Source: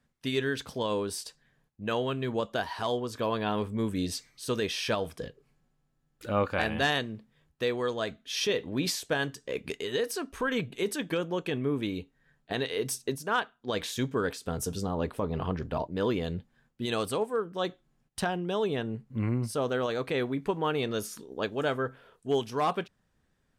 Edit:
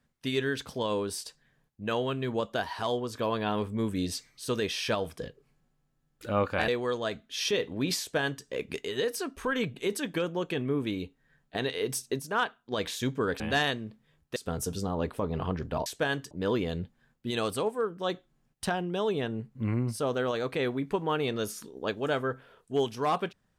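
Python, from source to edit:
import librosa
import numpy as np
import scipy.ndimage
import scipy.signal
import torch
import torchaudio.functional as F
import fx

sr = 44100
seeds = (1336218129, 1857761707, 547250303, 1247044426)

y = fx.edit(x, sr, fx.move(start_s=6.68, length_s=0.96, to_s=14.36),
    fx.duplicate(start_s=8.96, length_s=0.45, to_s=15.86), tone=tone)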